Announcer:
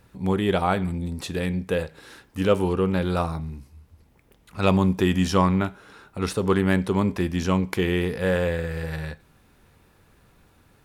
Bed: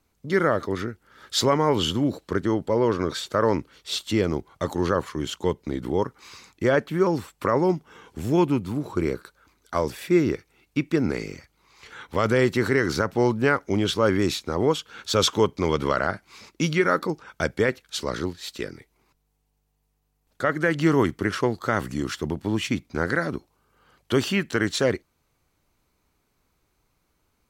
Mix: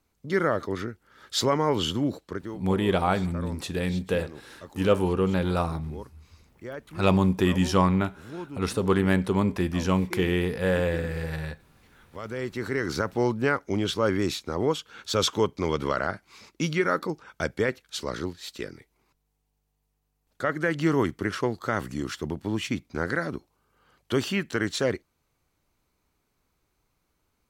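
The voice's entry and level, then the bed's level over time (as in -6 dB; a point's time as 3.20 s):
2.40 s, -1.5 dB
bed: 2.16 s -3 dB
2.65 s -17.5 dB
12.06 s -17.5 dB
12.97 s -3.5 dB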